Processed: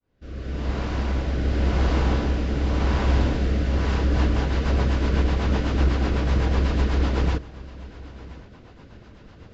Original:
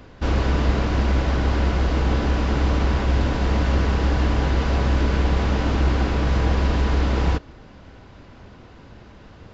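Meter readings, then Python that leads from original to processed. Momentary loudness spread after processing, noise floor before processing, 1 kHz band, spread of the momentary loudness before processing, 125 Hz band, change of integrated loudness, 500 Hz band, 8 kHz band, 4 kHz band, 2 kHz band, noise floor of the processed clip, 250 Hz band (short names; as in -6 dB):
18 LU, -45 dBFS, -4.5 dB, 1 LU, -2.0 dB, -2.0 dB, -2.5 dB, n/a, -3.0 dB, -3.5 dB, -47 dBFS, -2.0 dB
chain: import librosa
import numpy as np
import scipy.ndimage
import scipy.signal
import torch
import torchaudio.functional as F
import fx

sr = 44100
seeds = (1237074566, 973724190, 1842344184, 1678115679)

y = fx.fade_in_head(x, sr, length_s=1.45)
y = fx.rotary_switch(y, sr, hz=0.9, then_hz=8.0, switch_at_s=3.69)
y = y + 10.0 ** (-19.0 / 20.0) * np.pad(y, (int(1028 * sr / 1000.0), 0))[:len(y)]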